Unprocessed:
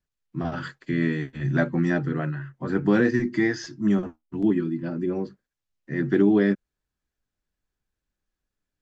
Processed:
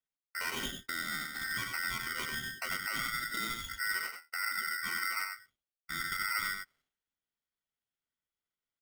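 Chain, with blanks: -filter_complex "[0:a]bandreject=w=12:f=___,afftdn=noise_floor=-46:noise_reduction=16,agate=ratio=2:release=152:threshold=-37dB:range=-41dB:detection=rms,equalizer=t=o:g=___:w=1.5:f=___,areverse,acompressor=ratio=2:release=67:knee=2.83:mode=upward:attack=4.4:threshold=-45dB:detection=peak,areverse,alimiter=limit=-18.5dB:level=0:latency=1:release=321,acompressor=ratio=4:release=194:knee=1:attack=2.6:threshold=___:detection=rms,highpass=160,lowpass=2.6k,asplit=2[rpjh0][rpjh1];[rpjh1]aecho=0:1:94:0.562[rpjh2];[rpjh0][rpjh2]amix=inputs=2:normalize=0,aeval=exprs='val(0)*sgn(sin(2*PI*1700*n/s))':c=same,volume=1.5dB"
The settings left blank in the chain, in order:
1.8k, 5.5, 1.8k, -34dB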